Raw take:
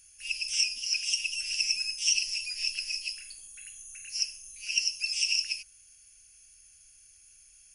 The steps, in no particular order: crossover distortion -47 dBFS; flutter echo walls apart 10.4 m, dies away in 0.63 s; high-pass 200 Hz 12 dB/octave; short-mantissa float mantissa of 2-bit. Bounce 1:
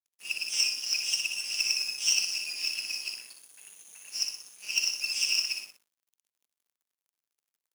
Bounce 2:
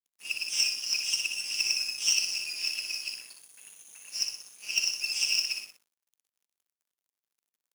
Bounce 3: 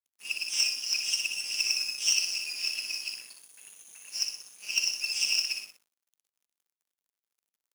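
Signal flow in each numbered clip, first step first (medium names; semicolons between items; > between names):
short-mantissa float > flutter echo > crossover distortion > high-pass; flutter echo > crossover distortion > high-pass > short-mantissa float; flutter echo > crossover distortion > short-mantissa float > high-pass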